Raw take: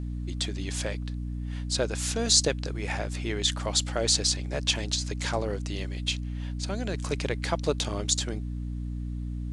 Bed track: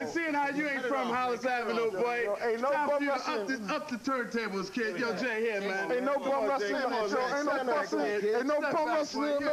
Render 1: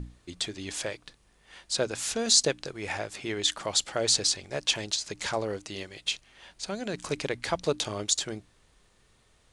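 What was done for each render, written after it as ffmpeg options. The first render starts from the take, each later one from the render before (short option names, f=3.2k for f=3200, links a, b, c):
-af "bandreject=f=60:t=h:w=6,bandreject=f=120:t=h:w=6,bandreject=f=180:t=h:w=6,bandreject=f=240:t=h:w=6,bandreject=f=300:t=h:w=6"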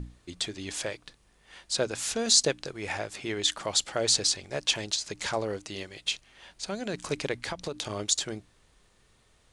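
-filter_complex "[0:a]asettb=1/sr,asplit=3[a][b][c];[a]atrim=end=7.414[d];[b]atrim=start=7.41:end=7.9,asetpts=PTS-STARTPTS,afade=t=in:d=0.004:c=qsin,afade=t=out:st=0.486:d=0.004:c=qsin,acompressor=threshold=-29dB:ratio=10:attack=3.2:release=140:knee=1:detection=peak[e];[c]atrim=start=7.896[f];[d][e]acrossfade=d=0.004:c1=hsin:c2=qsin[g];[g][f]acrossfade=d=0.004:c1=qsin:c2=hsin"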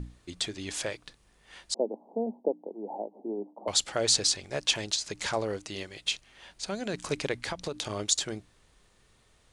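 -filter_complex "[0:a]asettb=1/sr,asplit=3[a][b][c];[a]atrim=end=1.744[d];[b]atrim=start=1.74:end=3.68,asetpts=PTS-STARTPTS,afade=t=in:d=0.004:c=qsin,afade=t=out:st=1.936:d=0.004:c=qsin,asuperpass=centerf=420:order=20:qfactor=0.58[e];[c]atrim=start=3.676[f];[d][e]acrossfade=d=0.004:c1=hsin:c2=qsin[g];[g][f]acrossfade=d=0.004:c1=qsin:c2=hsin"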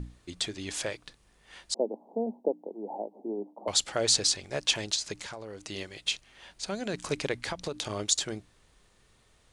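-filter_complex "[0:a]asettb=1/sr,asplit=3[a][b][c];[a]atrim=end=5.174[d];[b]atrim=start=5.17:end=5.62,asetpts=PTS-STARTPTS,afade=t=in:d=0.004:c=qsin,afade=t=out:st=0.446:d=0.004:c=qsin,acompressor=threshold=-37dB:ratio=8:attack=3.2:release=140:knee=1:detection=peak[e];[c]atrim=start=5.616[f];[d][e]acrossfade=d=0.004:c1=hsin:c2=qsin[g];[g][f]acrossfade=d=0.004:c1=qsin:c2=hsin"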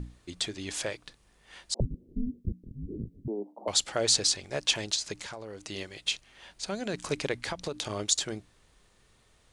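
-filter_complex "[0:a]asettb=1/sr,asplit=3[a][b][c];[a]atrim=end=1.804[d];[b]atrim=start=1.8:end=3.28,asetpts=PTS-STARTPTS,afade=t=in:d=0.004:c=qsin,afade=t=out:st=1.476:d=0.004:c=qsin,afreqshift=-480[e];[c]atrim=start=3.276[f];[d][e]acrossfade=d=0.004:c1=hsin:c2=qsin[g];[g][f]acrossfade=d=0.004:c1=qsin:c2=hsin"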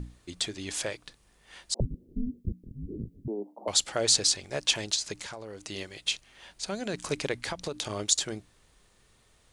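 -af "highshelf=f=8.7k:g=5"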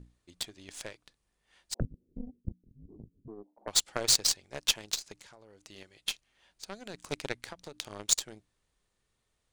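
-af "aeval=exprs='0.355*(cos(1*acos(clip(val(0)/0.355,-1,1)))-cos(1*PI/2))+0.00562*(cos(3*acos(clip(val(0)/0.355,-1,1)))-cos(3*PI/2))+0.0398*(cos(7*acos(clip(val(0)/0.355,-1,1)))-cos(7*PI/2))+0.00447*(cos(8*acos(clip(val(0)/0.355,-1,1)))-cos(8*PI/2))':c=same"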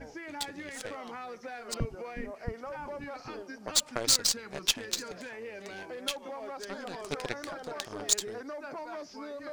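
-filter_complex "[1:a]volume=-11.5dB[a];[0:a][a]amix=inputs=2:normalize=0"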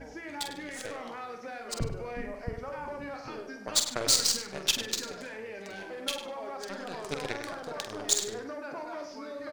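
-filter_complex "[0:a]asplit=2[a][b];[b]adelay=46,volume=-7.5dB[c];[a][c]amix=inputs=2:normalize=0,asplit=2[d][e];[e]adelay=100,lowpass=f=3.9k:p=1,volume=-8dB,asplit=2[f][g];[g]adelay=100,lowpass=f=3.9k:p=1,volume=0.32,asplit=2[h][i];[i]adelay=100,lowpass=f=3.9k:p=1,volume=0.32,asplit=2[j][k];[k]adelay=100,lowpass=f=3.9k:p=1,volume=0.32[l];[f][h][j][l]amix=inputs=4:normalize=0[m];[d][m]amix=inputs=2:normalize=0"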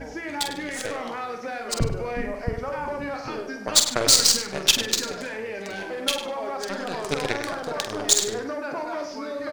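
-af "volume=8.5dB,alimiter=limit=-2dB:level=0:latency=1"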